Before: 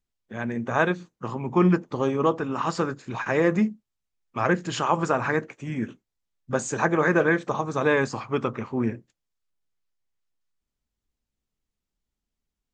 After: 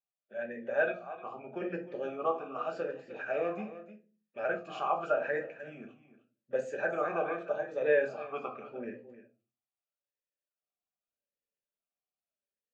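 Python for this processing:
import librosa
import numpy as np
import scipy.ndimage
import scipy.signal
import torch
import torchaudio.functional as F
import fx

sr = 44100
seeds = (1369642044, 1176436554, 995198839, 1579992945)

y = x + 10.0 ** (-14.0 / 20.0) * np.pad(x, (int(306 * sr / 1000.0), 0))[:len(x)]
y = fx.room_shoebox(y, sr, seeds[0], volume_m3=150.0, walls='furnished', distance_m=1.2)
y = fx.vowel_sweep(y, sr, vowels='a-e', hz=0.83)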